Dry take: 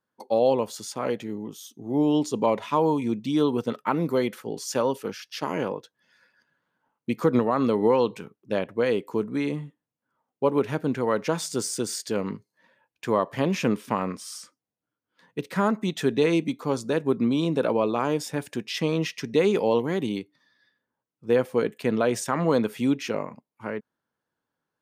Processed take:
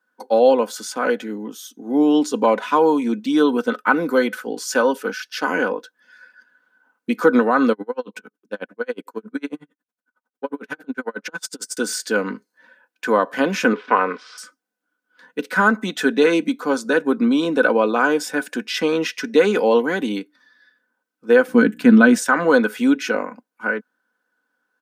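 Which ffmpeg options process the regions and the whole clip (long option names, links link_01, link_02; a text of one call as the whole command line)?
ffmpeg -i in.wav -filter_complex "[0:a]asettb=1/sr,asplit=3[link_01][link_02][link_03];[link_01]atrim=end=7.724[link_04];[link_02]atrim=start=7.72:end=11.77,asetpts=PTS-STARTPTS,afade=type=in:duration=0.004:curve=qsin,afade=type=out:start_time=4.046:duration=0.004:curve=qsin,acompressor=threshold=-23dB:ratio=10:attack=3.2:release=140:knee=1:detection=peak,aeval=exprs='val(0)*pow(10,-38*(0.5-0.5*cos(2*PI*11*n/s))/20)':channel_layout=same[link_05];[link_03]atrim=start=11.766[link_06];[link_04][link_05]acrossfade=duration=0.004:curve1=hsin:curve2=qsin[link_07];[link_07][link_06]acrossfade=duration=0.004:curve1=qsin:curve2=hsin,asettb=1/sr,asplit=3[link_08][link_09][link_10];[link_08]atrim=end=13.734[link_11];[link_09]atrim=start=13.73:end=14.38,asetpts=PTS-STARTPTS,afade=type=in:duration=0.004:curve=qsin,afade=type=out:start_time=0.646:duration=0.004:curve=qsin,bandreject=frequency=900:width=26,aeval=exprs='val(0)*gte(abs(val(0)),0.00422)':channel_layout=same,highpass=140,equalizer=frequency=210:width_type=q:width=4:gain=-8,equalizer=frequency=300:width_type=q:width=4:gain=-4,equalizer=frequency=420:width_type=q:width=4:gain=8,equalizer=frequency=1000:width_type=q:width=4:gain=6,equalizer=frequency=2200:width_type=q:width=4:gain=4,lowpass=frequency=3900:width=0.5412,lowpass=frequency=3900:width=1.3066[link_12];[link_10]atrim=start=14.376[link_13];[link_11][link_12]acrossfade=duration=0.004:curve1=hsin:curve2=qsin[link_14];[link_14][link_13]acrossfade=duration=0.004:curve1=qsin:curve2=hsin,asettb=1/sr,asplit=3[link_15][link_16][link_17];[link_15]atrim=end=21.474[link_18];[link_16]atrim=start=21.47:end=22.18,asetpts=PTS-STARTPTS,afade=type=in:duration=0.004:curve=qsin,afade=type=out:start_time=0.706:duration=0.004:curve=qsin,lowshelf=frequency=320:width_type=q:width=1.5:gain=10,aeval=exprs='val(0)+0.0112*(sin(2*PI*60*n/s)+sin(2*PI*2*60*n/s)/2+sin(2*PI*3*60*n/s)/3+sin(2*PI*4*60*n/s)/4+sin(2*PI*5*60*n/s)/5)':channel_layout=same[link_19];[link_17]atrim=start=22.176[link_20];[link_18][link_19]acrossfade=duration=0.004:curve1=hsin:curve2=qsin[link_21];[link_21][link_20]acrossfade=duration=0.004:curve1=qsin:curve2=hsin,highpass=frequency=220:width=0.5412,highpass=frequency=220:width=1.3066,equalizer=frequency=1500:width_type=o:width=0.24:gain=15,aecho=1:1:4:0.45,volume=5dB" out.wav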